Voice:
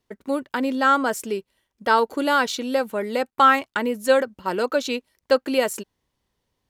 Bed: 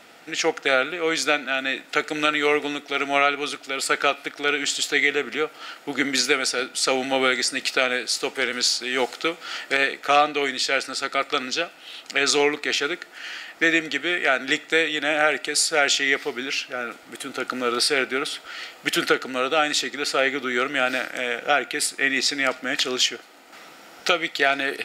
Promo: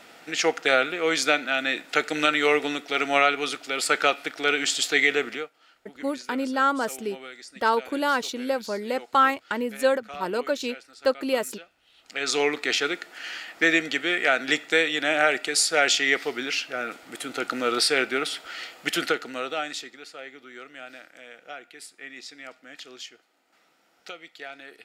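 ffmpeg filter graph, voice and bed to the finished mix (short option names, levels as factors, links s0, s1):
-filter_complex "[0:a]adelay=5750,volume=0.631[s0];[1:a]volume=9.44,afade=t=out:st=5.24:d=0.26:silence=0.0944061,afade=t=in:st=11.95:d=0.66:silence=0.1,afade=t=out:st=18.5:d=1.59:silence=0.11885[s1];[s0][s1]amix=inputs=2:normalize=0"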